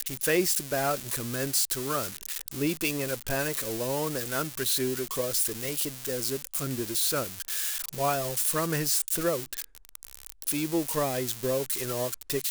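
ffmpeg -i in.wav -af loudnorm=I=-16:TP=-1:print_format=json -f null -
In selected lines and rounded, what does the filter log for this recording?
"input_i" : "-28.4",
"input_tp" : "-14.3",
"input_lra" : "2.4",
"input_thresh" : "-38.6",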